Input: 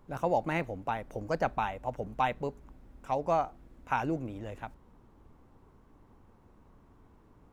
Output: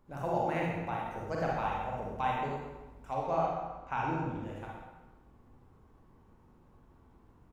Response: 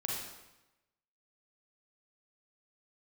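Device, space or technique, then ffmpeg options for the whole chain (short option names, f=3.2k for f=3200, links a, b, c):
bathroom: -filter_complex "[0:a]asettb=1/sr,asplit=3[a][b][c];[a]atrim=end=3.134[d];[b]atrim=start=3.13:end=4.43,asetpts=PTS-STARTPTS,afade=t=in:d=0.004:c=qsin,afade=t=out:st=1.296:d=0.004:c=qsin,lowpass=6k[e];[c]atrim=start=4.426[f];[d][e]acrossfade=d=0.004:c1=hsin:c2=qsin[g];[g][f]acrossfade=d=0.004:c1=qsin:c2=hsin[h];[1:a]atrim=start_sample=2205[i];[h][i]afir=irnorm=-1:irlink=0,asplit=2[j][k];[k]adelay=129,lowpass=f=4.1k:p=1,volume=-10dB,asplit=2[l][m];[m]adelay=129,lowpass=f=4.1k:p=1,volume=0.43,asplit=2[n][o];[o]adelay=129,lowpass=f=4.1k:p=1,volume=0.43,asplit=2[p][q];[q]adelay=129,lowpass=f=4.1k:p=1,volume=0.43,asplit=2[r][s];[s]adelay=129,lowpass=f=4.1k:p=1,volume=0.43[t];[j][l][n][p][r][t]amix=inputs=6:normalize=0,volume=-5.5dB"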